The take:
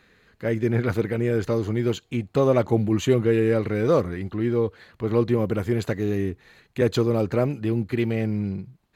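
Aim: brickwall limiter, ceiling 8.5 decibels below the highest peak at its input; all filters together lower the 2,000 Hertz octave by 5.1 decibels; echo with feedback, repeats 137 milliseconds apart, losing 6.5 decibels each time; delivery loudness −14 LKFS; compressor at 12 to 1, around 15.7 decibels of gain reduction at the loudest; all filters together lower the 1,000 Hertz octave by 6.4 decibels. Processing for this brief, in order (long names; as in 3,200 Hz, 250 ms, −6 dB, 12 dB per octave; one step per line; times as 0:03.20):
parametric band 1,000 Hz −7.5 dB
parametric band 2,000 Hz −4 dB
downward compressor 12 to 1, threshold −32 dBFS
brickwall limiter −31.5 dBFS
repeating echo 137 ms, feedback 47%, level −6.5 dB
level +26 dB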